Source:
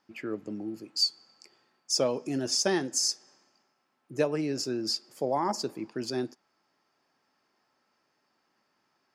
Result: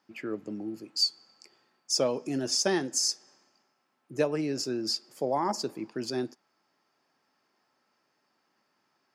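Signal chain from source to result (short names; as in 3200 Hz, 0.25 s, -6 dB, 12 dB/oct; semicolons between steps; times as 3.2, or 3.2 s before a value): HPF 88 Hz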